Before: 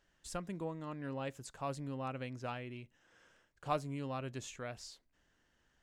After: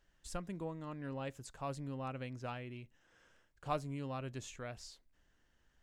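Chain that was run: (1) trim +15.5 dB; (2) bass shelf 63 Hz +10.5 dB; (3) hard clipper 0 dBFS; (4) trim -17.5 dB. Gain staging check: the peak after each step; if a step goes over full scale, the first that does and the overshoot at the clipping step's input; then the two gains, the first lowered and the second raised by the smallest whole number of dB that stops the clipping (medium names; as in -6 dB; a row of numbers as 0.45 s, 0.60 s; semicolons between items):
-5.0 dBFS, -5.0 dBFS, -5.0 dBFS, -22.5 dBFS; nothing clips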